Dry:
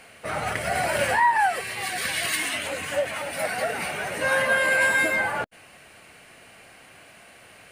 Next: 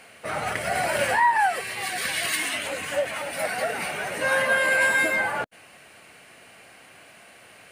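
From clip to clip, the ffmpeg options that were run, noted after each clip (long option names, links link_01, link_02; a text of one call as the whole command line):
ffmpeg -i in.wav -af "lowshelf=frequency=66:gain=-12" out.wav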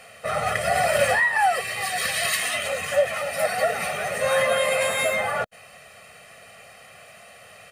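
ffmpeg -i in.wav -af "aecho=1:1:1.6:0.95" out.wav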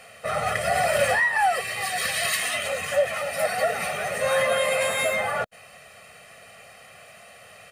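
ffmpeg -i in.wav -af "acontrast=59,volume=-7dB" out.wav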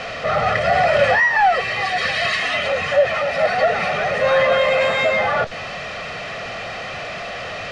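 ffmpeg -i in.wav -af "aeval=exprs='val(0)+0.5*0.0398*sgn(val(0))':channel_layout=same,lowpass=frequency=5600:width=0.5412,lowpass=frequency=5600:width=1.3066,aemphasis=mode=reproduction:type=cd,volume=5dB" out.wav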